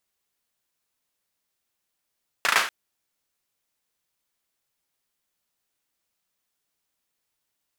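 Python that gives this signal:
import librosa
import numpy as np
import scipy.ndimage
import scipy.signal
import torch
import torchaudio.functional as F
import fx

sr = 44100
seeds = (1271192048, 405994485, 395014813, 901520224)

y = fx.drum_clap(sr, seeds[0], length_s=0.24, bursts=4, spacing_ms=36, hz=1500.0, decay_s=0.42)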